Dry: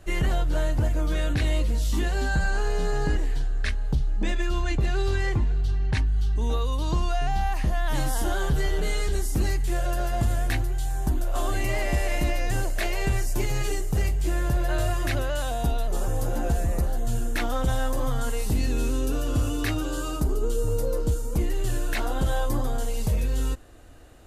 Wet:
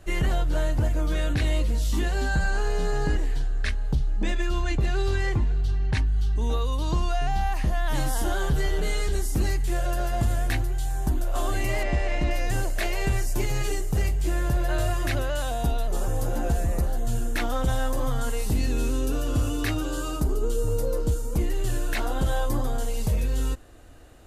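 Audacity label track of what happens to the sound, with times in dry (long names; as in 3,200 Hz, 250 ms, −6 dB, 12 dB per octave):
11.830000	12.310000	high-frequency loss of the air 110 metres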